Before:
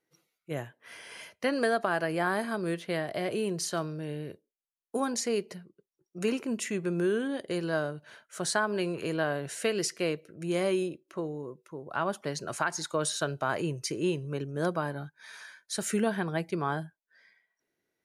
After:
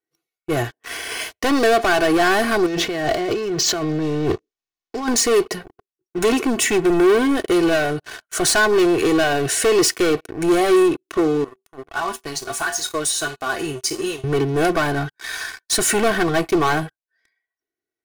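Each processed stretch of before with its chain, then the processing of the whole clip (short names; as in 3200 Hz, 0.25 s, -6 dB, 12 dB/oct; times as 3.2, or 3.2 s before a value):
2.66–5.08 low shelf 330 Hz +5 dB + negative-ratio compressor -39 dBFS + careless resampling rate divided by 3×, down none, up filtered
11.44–14.24 high shelf 4700 Hz +9.5 dB + resonator 77 Hz, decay 0.33 s, harmonics odd, mix 80% + flange 1.5 Hz, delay 3.9 ms, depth 4.2 ms, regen +27%
whole clip: sample leveller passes 5; comb 2.7 ms, depth 66%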